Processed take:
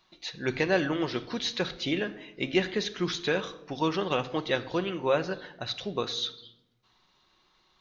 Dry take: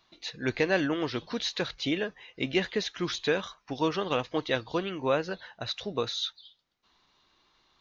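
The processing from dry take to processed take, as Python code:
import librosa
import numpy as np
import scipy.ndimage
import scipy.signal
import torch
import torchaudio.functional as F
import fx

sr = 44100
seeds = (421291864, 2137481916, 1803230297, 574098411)

y = fx.room_shoebox(x, sr, seeds[0], volume_m3=2900.0, walls='furnished', distance_m=1.0)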